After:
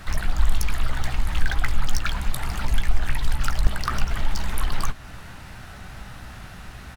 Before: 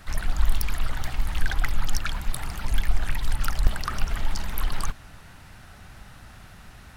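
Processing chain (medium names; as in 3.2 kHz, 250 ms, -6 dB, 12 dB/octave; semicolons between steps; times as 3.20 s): in parallel at +1 dB: compression, threshold -29 dBFS, peak gain reduction 17.5 dB; on the sum: doubling 16 ms -11 dB; decimation joined by straight lines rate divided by 2×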